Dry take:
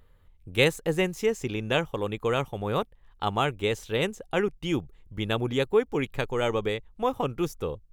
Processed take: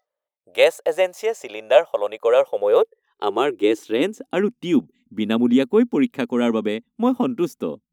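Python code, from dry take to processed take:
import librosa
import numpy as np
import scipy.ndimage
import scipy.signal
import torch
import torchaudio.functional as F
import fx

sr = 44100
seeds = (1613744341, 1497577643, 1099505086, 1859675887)

y = fx.filter_sweep_highpass(x, sr, from_hz=610.0, to_hz=240.0, start_s=2.06, end_s=4.49, q=7.5)
y = fx.noise_reduce_blind(y, sr, reduce_db=22)
y = y * 10.0 ** (1.5 / 20.0)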